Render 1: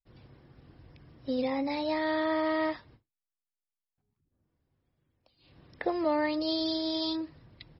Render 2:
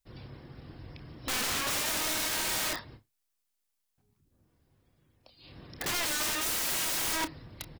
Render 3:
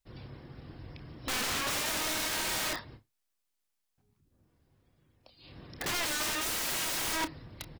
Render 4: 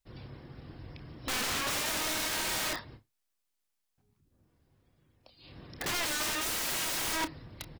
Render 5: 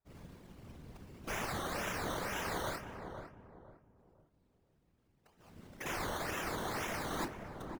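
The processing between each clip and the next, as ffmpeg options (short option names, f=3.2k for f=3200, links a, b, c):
-filter_complex "[0:a]highshelf=f=4.3k:g=5.5,aeval=exprs='(mod(50.1*val(0)+1,2)-1)/50.1':c=same,asplit=2[a][b];[b]adelay=29,volume=-12dB[c];[a][c]amix=inputs=2:normalize=0,volume=7.5dB"
-af "highshelf=f=6.6k:g=-4"
-af anull
-filter_complex "[0:a]acrusher=samples=14:mix=1:aa=0.000001:lfo=1:lforange=8.4:lforate=2,afftfilt=real='hypot(re,im)*cos(2*PI*random(0))':imag='hypot(re,im)*sin(2*PI*random(1))':win_size=512:overlap=0.75,asplit=2[a][b];[b]adelay=504,lowpass=f=800:p=1,volume=-5dB,asplit=2[c][d];[d]adelay=504,lowpass=f=800:p=1,volume=0.36,asplit=2[e][f];[f]adelay=504,lowpass=f=800:p=1,volume=0.36,asplit=2[g][h];[h]adelay=504,lowpass=f=800:p=1,volume=0.36[i];[a][c][e][g][i]amix=inputs=5:normalize=0"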